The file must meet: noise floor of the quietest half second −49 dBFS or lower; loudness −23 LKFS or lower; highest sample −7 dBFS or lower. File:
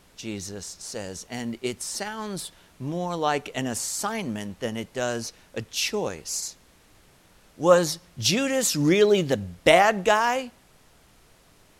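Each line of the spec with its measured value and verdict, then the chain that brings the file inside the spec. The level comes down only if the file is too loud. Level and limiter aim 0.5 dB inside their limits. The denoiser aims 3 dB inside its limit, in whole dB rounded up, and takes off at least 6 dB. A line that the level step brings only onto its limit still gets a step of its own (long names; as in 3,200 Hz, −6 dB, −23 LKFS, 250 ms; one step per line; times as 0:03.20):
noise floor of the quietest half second −57 dBFS: in spec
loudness −25.0 LKFS: in spec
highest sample −3.5 dBFS: out of spec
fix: brickwall limiter −7.5 dBFS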